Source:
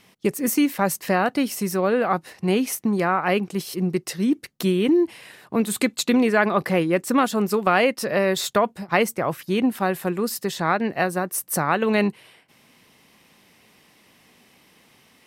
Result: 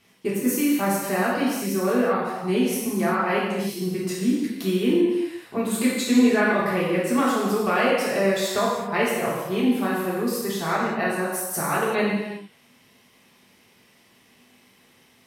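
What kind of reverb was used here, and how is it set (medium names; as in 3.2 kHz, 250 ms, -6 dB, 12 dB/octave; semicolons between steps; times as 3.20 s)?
gated-style reverb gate 410 ms falling, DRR -7 dB; trim -9 dB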